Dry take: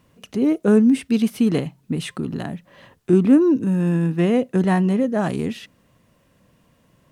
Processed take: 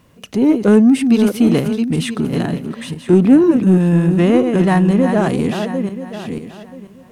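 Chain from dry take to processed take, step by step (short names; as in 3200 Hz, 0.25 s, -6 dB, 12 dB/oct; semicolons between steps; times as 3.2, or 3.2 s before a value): regenerating reverse delay 0.491 s, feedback 41%, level -7 dB; in parallel at -4.5 dB: soft clip -18.5 dBFS, distortion -9 dB; on the sum: gain +2.5 dB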